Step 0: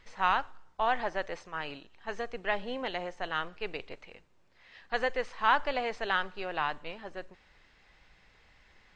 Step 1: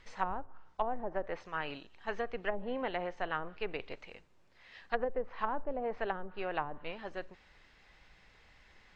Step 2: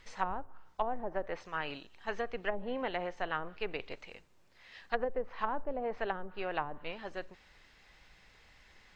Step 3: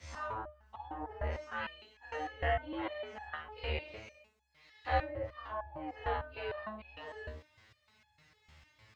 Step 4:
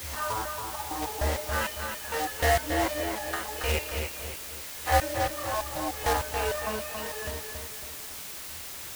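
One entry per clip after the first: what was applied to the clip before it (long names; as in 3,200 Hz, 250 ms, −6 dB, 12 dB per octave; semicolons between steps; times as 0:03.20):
treble cut that deepens with the level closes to 490 Hz, closed at −26 dBFS
high-shelf EQ 5,200 Hz +7.5 dB
every bin's largest magnitude spread in time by 120 ms; frequency shifter +66 Hz; step-sequenced resonator 6.6 Hz 77–850 Hz; level +3 dB
one scale factor per block 3 bits; feedback echo with a low-pass in the loop 277 ms, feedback 42%, low-pass 4,800 Hz, level −5.5 dB; bit-depth reduction 8 bits, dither triangular; level +8 dB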